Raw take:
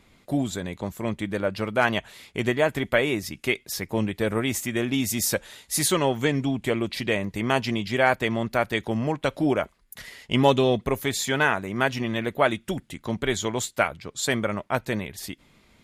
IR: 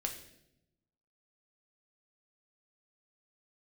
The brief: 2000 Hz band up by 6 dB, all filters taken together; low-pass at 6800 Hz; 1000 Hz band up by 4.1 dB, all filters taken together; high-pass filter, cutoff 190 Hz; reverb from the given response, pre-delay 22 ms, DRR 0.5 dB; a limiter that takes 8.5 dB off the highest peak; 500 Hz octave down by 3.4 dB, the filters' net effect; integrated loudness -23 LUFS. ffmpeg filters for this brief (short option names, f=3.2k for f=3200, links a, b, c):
-filter_complex "[0:a]highpass=190,lowpass=6.8k,equalizer=f=500:t=o:g=-6.5,equalizer=f=1k:t=o:g=6,equalizer=f=2k:t=o:g=6,alimiter=limit=-9.5dB:level=0:latency=1,asplit=2[a][b];[1:a]atrim=start_sample=2205,adelay=22[c];[b][c]afir=irnorm=-1:irlink=0,volume=-1.5dB[d];[a][d]amix=inputs=2:normalize=0,volume=0.5dB"